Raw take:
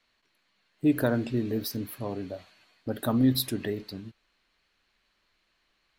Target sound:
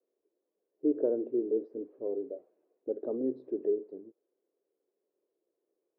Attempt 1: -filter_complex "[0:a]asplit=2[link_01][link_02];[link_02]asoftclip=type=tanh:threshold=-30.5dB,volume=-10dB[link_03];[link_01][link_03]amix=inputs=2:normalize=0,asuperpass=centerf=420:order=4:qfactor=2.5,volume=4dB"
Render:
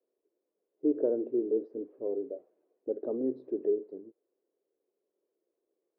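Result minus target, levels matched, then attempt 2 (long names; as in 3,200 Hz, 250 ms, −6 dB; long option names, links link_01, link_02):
soft clipping: distortion −4 dB
-filter_complex "[0:a]asplit=2[link_01][link_02];[link_02]asoftclip=type=tanh:threshold=-42dB,volume=-10dB[link_03];[link_01][link_03]amix=inputs=2:normalize=0,asuperpass=centerf=420:order=4:qfactor=2.5,volume=4dB"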